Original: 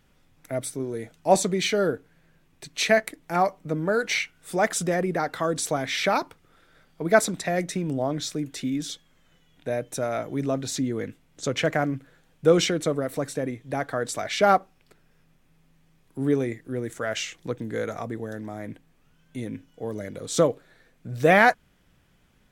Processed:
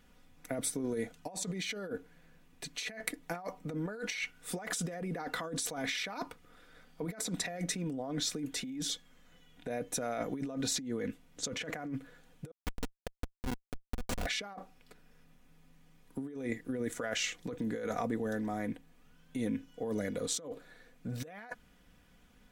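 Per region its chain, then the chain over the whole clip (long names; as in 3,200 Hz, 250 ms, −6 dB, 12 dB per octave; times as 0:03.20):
0:12.51–0:14.26: compressor whose output falls as the input rises −29 dBFS, ratio −0.5 + comparator with hysteresis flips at −22 dBFS
whole clip: comb filter 4.1 ms, depth 48%; compressor whose output falls as the input rises −31 dBFS, ratio −1; level −7 dB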